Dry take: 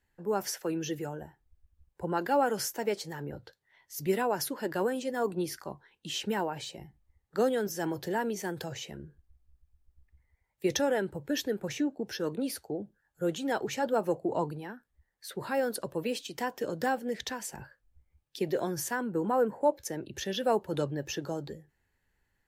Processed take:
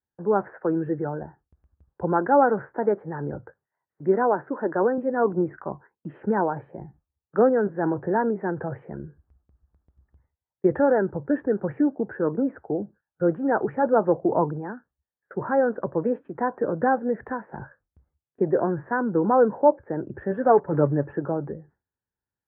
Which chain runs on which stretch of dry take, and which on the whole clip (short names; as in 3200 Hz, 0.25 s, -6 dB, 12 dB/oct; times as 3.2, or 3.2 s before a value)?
3.99–4.98 HPF 210 Hz + high shelf 2800 Hz -4.5 dB
20.31–21.13 block floating point 5-bit + LPF 10000 Hz + comb 7 ms, depth 48%
whole clip: steep low-pass 1600 Hz 48 dB/oct; gate with hold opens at -53 dBFS; HPF 75 Hz; gain +8.5 dB